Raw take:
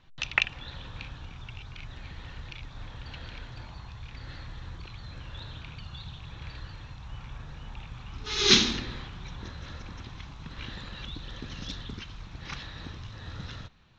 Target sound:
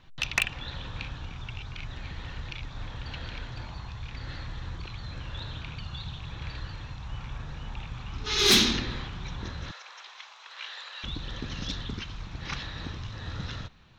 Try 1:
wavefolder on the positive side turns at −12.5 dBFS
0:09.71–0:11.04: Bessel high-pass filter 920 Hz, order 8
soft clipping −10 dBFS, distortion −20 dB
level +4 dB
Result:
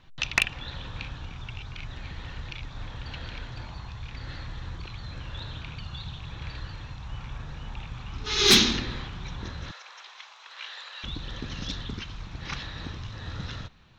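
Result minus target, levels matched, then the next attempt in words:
soft clipping: distortion −8 dB
wavefolder on the positive side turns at −12.5 dBFS
0:09.71–0:11.04: Bessel high-pass filter 920 Hz, order 8
soft clipping −17.5 dBFS, distortion −12 dB
level +4 dB

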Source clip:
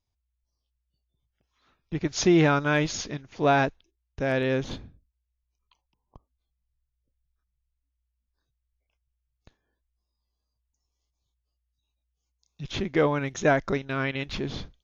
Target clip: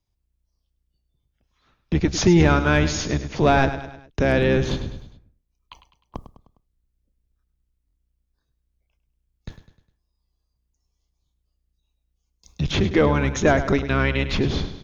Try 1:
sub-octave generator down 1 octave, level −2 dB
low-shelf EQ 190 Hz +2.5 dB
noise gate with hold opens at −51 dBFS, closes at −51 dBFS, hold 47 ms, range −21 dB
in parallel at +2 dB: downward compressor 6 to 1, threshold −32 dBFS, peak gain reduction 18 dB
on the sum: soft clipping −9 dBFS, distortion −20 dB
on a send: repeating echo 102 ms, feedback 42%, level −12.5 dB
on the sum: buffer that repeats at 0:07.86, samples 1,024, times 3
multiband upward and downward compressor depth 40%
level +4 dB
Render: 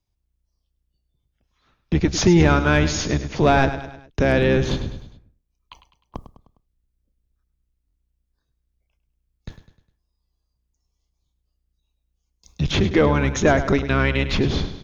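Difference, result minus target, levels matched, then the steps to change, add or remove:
downward compressor: peak gain reduction −6 dB
change: downward compressor 6 to 1, threshold −39.5 dBFS, peak gain reduction 24.5 dB

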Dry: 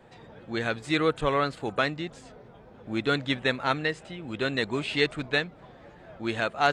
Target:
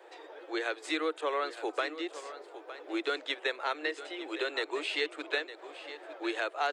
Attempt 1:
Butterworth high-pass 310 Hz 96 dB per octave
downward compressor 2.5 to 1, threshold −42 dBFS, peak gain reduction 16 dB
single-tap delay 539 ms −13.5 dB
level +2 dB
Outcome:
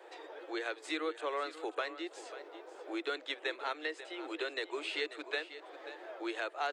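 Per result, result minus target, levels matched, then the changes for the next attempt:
echo 371 ms early; downward compressor: peak gain reduction +4.5 dB
change: single-tap delay 910 ms −13.5 dB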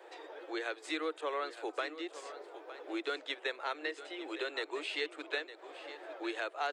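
downward compressor: peak gain reduction +4.5 dB
change: downward compressor 2.5 to 1, threshold −34.5 dBFS, peak gain reduction 11.5 dB

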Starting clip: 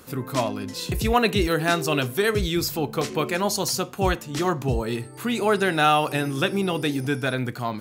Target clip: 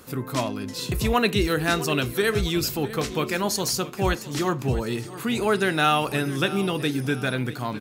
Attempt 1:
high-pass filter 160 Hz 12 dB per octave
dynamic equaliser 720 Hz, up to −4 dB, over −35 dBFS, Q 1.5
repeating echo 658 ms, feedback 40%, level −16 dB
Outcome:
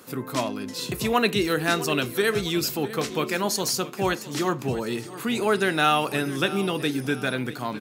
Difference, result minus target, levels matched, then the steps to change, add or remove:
125 Hz band −4.0 dB
remove: high-pass filter 160 Hz 12 dB per octave

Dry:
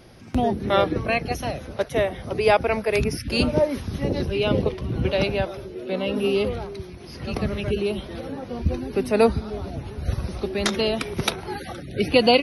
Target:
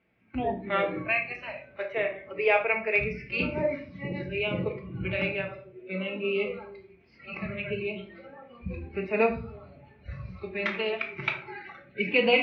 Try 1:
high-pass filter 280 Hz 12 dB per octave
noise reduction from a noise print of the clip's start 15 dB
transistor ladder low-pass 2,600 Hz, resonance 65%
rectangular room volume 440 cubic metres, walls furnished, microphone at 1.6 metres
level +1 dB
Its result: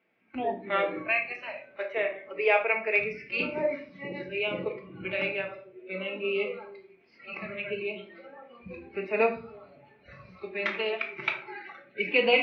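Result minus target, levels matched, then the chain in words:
125 Hz band −10.0 dB
high-pass filter 81 Hz 12 dB per octave
noise reduction from a noise print of the clip's start 15 dB
transistor ladder low-pass 2,600 Hz, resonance 65%
rectangular room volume 440 cubic metres, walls furnished, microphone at 1.6 metres
level +1 dB

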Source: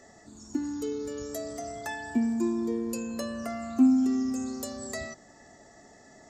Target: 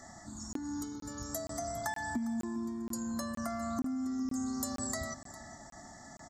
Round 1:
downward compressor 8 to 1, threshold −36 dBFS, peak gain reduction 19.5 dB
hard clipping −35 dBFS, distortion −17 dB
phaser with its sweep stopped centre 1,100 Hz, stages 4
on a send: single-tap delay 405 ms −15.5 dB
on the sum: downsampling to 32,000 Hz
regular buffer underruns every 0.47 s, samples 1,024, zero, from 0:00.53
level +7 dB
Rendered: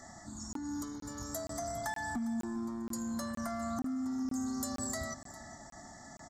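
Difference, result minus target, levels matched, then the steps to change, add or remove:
hard clipping: distortion +20 dB
change: hard clipping −28 dBFS, distortion −36 dB

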